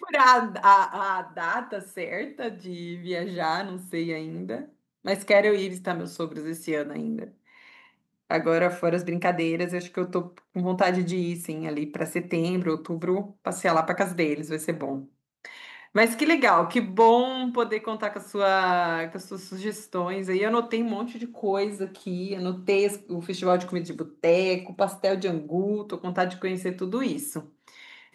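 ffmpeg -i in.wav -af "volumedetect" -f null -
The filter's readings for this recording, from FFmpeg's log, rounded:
mean_volume: -26.0 dB
max_volume: -6.3 dB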